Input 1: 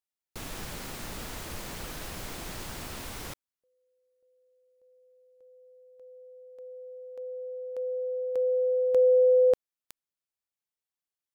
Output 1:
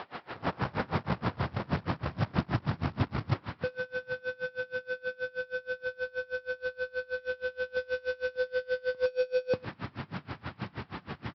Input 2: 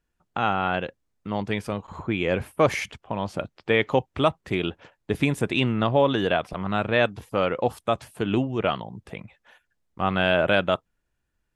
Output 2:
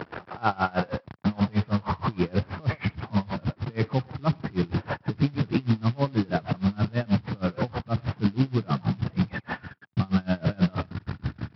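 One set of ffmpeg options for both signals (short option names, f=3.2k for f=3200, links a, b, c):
-filter_complex "[0:a]aeval=exprs='val(0)+0.5*0.0944*sgn(val(0))':c=same,acompressor=threshold=-23dB:ratio=1.5:attack=14:release=66:knee=1,lowpass=1.2k,asplit=2[a][b];[b]adelay=110,highpass=300,lowpass=3.4k,asoftclip=type=hard:threshold=-19dB,volume=-7dB[c];[a][c]amix=inputs=2:normalize=0,asubboost=boost=11:cutoff=160,alimiter=limit=-11.5dB:level=0:latency=1:release=58,acontrast=61,highpass=f=98:w=0.5412,highpass=f=98:w=1.3066,lowshelf=f=360:g=-7,aresample=11025,acrusher=bits=4:mode=log:mix=0:aa=0.000001,aresample=44100,aeval=exprs='val(0)*pow(10,-28*(0.5-0.5*cos(2*PI*6.3*n/s))/20)':c=same"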